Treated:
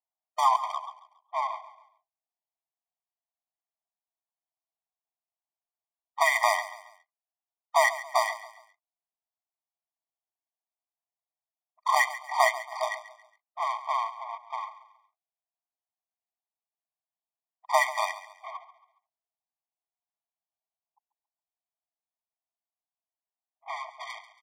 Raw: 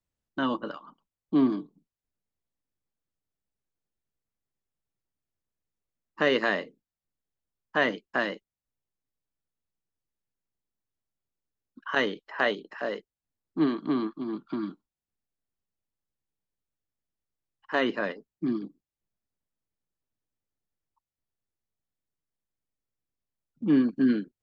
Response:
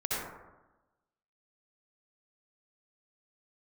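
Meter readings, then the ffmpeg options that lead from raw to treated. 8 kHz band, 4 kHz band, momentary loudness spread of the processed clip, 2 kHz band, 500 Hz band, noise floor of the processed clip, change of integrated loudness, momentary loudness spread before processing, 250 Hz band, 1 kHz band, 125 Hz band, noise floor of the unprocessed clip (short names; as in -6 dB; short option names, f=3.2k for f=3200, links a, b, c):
n/a, 0.0 dB, 18 LU, +1.5 dB, -2.5 dB, under -85 dBFS, +0.5 dB, 15 LU, under -40 dB, +10.0 dB, under -40 dB, under -85 dBFS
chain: -filter_complex "[0:a]highpass=f=280:t=q:w=0.5412,highpass=f=280:t=q:w=1.307,lowpass=f=2.8k:t=q:w=0.5176,lowpass=f=2.8k:t=q:w=0.7071,lowpass=f=2.8k:t=q:w=1.932,afreqshift=-74,asplit=2[a][b];[b]alimiter=limit=-22dB:level=0:latency=1:release=421,volume=-2.5dB[c];[a][c]amix=inputs=2:normalize=0,adynamicsmooth=sensitivity=6.5:basefreq=520,aecho=1:1:138|276|414:0.178|0.0658|0.0243,afftfilt=real='re*eq(mod(floor(b*sr/1024/620),2),1)':imag='im*eq(mod(floor(b*sr/1024/620),2),1)':win_size=1024:overlap=0.75,volume=8.5dB"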